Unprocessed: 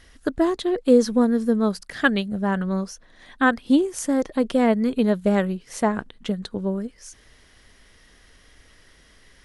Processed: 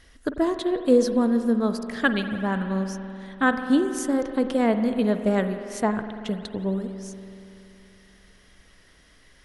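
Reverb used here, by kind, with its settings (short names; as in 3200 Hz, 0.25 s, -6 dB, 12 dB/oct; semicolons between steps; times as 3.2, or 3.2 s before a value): spring tank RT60 2.9 s, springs 47 ms, chirp 45 ms, DRR 8 dB; gain -2.5 dB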